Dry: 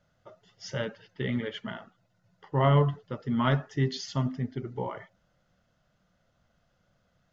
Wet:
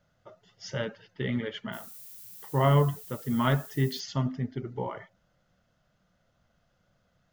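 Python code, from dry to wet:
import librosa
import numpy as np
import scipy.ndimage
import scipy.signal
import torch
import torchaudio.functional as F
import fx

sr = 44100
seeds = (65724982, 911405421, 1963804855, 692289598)

y = fx.dmg_noise_colour(x, sr, seeds[0], colour='violet', level_db=-47.0, at=(1.72, 3.99), fade=0.02)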